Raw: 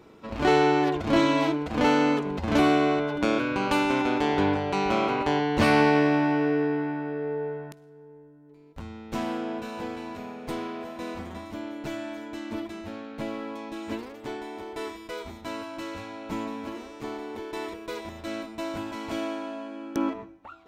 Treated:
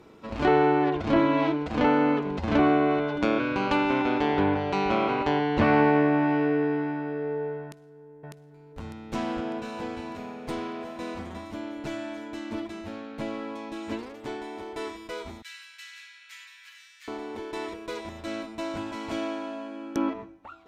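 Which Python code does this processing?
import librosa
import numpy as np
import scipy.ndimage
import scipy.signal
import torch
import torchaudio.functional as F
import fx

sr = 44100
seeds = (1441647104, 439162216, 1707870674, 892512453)

y = fx.echo_throw(x, sr, start_s=7.63, length_s=1.17, ms=600, feedback_pct=55, wet_db=-0.5)
y = fx.cheby1_highpass(y, sr, hz=1700.0, order=4, at=(15.42, 17.08))
y = fx.env_lowpass_down(y, sr, base_hz=2000.0, full_db=-17.5)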